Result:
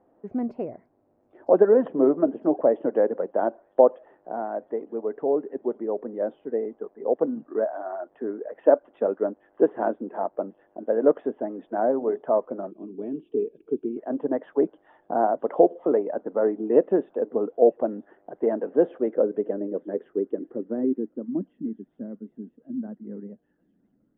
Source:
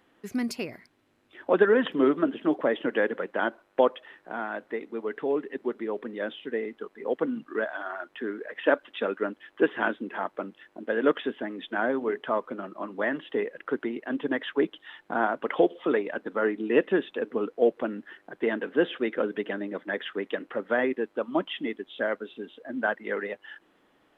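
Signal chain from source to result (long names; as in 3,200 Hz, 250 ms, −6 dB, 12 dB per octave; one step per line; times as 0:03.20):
low-pass filter sweep 670 Hz → 210 Hz, 0:18.92–0:21.72
delay with a high-pass on its return 960 ms, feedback 75%, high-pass 5,600 Hz, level −10.5 dB
gain on a spectral selection 0:12.71–0:13.97, 460–2,200 Hz −22 dB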